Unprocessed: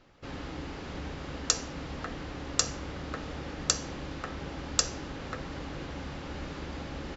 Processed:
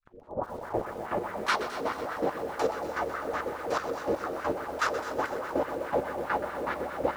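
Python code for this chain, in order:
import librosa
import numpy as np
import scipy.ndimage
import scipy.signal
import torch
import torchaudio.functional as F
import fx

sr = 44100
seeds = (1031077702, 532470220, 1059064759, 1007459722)

p1 = fx.tape_start_head(x, sr, length_s=1.82)
p2 = fx.schmitt(p1, sr, flips_db=-27.0)
p3 = p1 + F.gain(torch.from_numpy(p2), -8.0).numpy()
p4 = fx.high_shelf(p3, sr, hz=3200.0, db=-4.5)
p5 = fx.room_shoebox(p4, sr, seeds[0], volume_m3=98.0, walls='mixed', distance_m=2.4)
p6 = fx.dynamic_eq(p5, sr, hz=580.0, q=1.0, threshold_db=-42.0, ratio=4.0, max_db=4)
p7 = fx.fold_sine(p6, sr, drive_db=13, ceiling_db=-5.0)
p8 = fx.rider(p7, sr, range_db=4, speed_s=2.0)
p9 = p8 + fx.echo_wet_highpass(p8, sr, ms=232, feedback_pct=56, hz=3800.0, wet_db=-3.0, dry=0)
p10 = fx.chopper(p9, sr, hz=2.7, depth_pct=65, duty_pct=20)
p11 = fx.quant_float(p10, sr, bits=6)
p12 = fx.wah_lfo(p11, sr, hz=4.8, low_hz=460.0, high_hz=1500.0, q=3.5)
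p13 = fx.echo_crushed(p12, sr, ms=125, feedback_pct=80, bits=7, wet_db=-12)
y = F.gain(torch.from_numpy(p13), -4.0).numpy()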